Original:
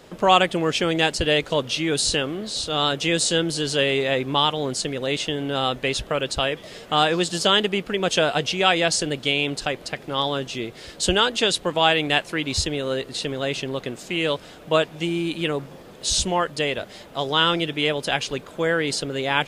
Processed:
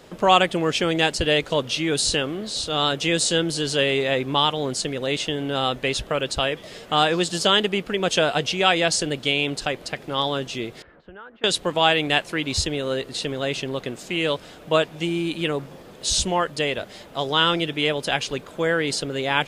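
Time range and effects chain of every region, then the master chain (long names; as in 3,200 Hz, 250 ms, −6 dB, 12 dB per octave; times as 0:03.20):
0:10.82–0:11.44: downward compressor 2.5 to 1, threshold −38 dBFS + transistor ladder low-pass 1,900 Hz, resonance 40%
whole clip: no processing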